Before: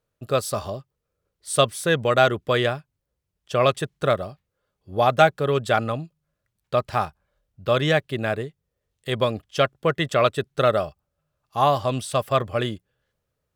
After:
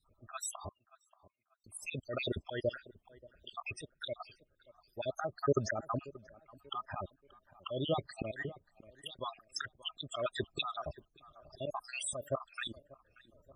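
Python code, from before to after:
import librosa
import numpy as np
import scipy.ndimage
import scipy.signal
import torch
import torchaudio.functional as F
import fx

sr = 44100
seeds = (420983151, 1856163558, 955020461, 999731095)

p1 = fx.spec_dropout(x, sr, seeds[0], share_pct=69)
p2 = p1 + 0.32 * np.pad(p1, (int(3.2 * sr / 1000.0), 0))[:len(p1)]
p3 = fx.auto_swell(p2, sr, attack_ms=730.0)
p4 = fx.over_compress(p3, sr, threshold_db=-51.0, ratio=-1.0)
p5 = p3 + (p4 * 10.0 ** (-0.5 / 20.0))
p6 = fx.dmg_noise_colour(p5, sr, seeds[1], colour='brown', level_db=-79.0)
p7 = fx.spec_topn(p6, sr, count=32)
p8 = fx.brickwall_bandpass(p7, sr, low_hz=1000.0, high_hz=2900.0, at=(0.68, 1.64), fade=0.02)
p9 = fx.echo_tape(p8, sr, ms=584, feedback_pct=39, wet_db=-18.0, lp_hz=1300.0, drive_db=15.0, wow_cents=39)
p10 = fx.am_noise(p9, sr, seeds[2], hz=5.7, depth_pct=60)
y = p10 * 10.0 ** (5.5 / 20.0)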